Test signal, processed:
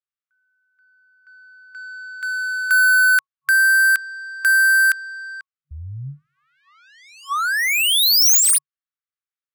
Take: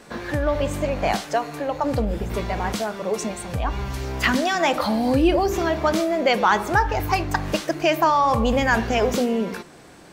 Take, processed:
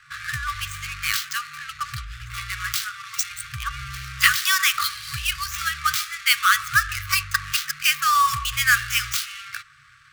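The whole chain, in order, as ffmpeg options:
-af "adynamicsmooth=sensitivity=7.5:basefreq=1700,aemphasis=mode=production:type=bsi,afftfilt=real='re*(1-between(b*sr/4096,150,1100))':imag='im*(1-between(b*sr/4096,150,1100))':win_size=4096:overlap=0.75,volume=1.5"

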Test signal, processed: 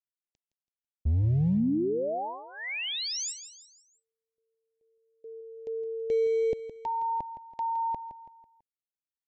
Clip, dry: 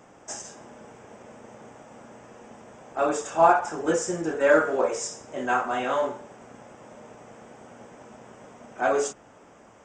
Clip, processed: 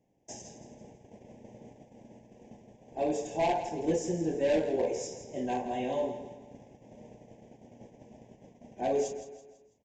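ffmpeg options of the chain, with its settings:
-af "agate=range=0.141:threshold=0.00501:ratio=16:detection=peak,lowshelf=f=360:g=11.5,aresample=16000,asoftclip=type=hard:threshold=0.211,aresample=44100,asuperstop=centerf=1300:order=4:qfactor=1.2,aecho=1:1:165|330|495|660:0.251|0.108|0.0464|0.02,volume=0.376"

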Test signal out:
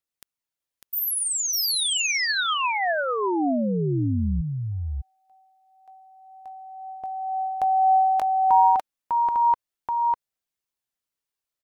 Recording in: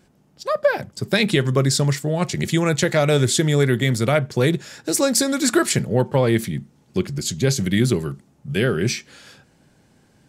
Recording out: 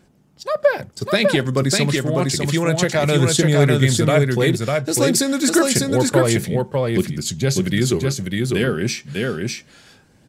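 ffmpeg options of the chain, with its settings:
-af "aphaser=in_gain=1:out_gain=1:delay=4.3:decay=0.25:speed=0.29:type=triangular,aecho=1:1:600:0.708"

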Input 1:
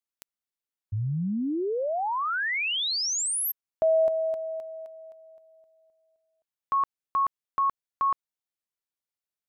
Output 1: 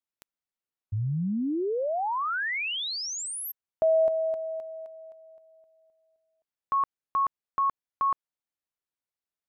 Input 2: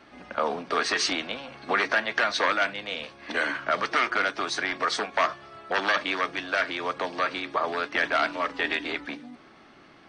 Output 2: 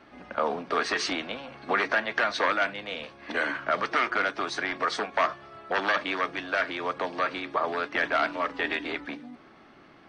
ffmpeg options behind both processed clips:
-af "highshelf=f=3400:g=-7.5"

